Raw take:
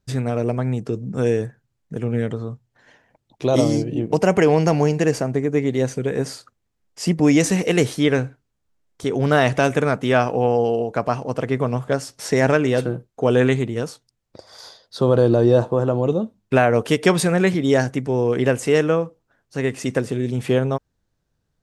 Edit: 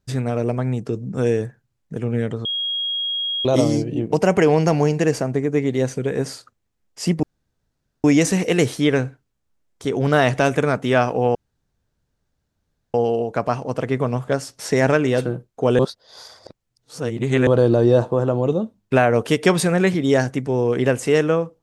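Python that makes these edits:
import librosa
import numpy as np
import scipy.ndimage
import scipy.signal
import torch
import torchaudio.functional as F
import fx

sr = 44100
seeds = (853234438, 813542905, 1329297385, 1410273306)

y = fx.edit(x, sr, fx.bleep(start_s=2.45, length_s=1.0, hz=3280.0, db=-21.0),
    fx.insert_room_tone(at_s=7.23, length_s=0.81),
    fx.insert_room_tone(at_s=10.54, length_s=1.59),
    fx.reverse_span(start_s=13.39, length_s=1.68), tone=tone)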